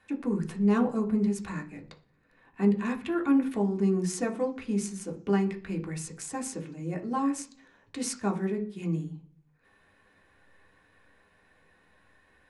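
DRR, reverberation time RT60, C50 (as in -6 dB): 1.0 dB, 0.50 s, 14.0 dB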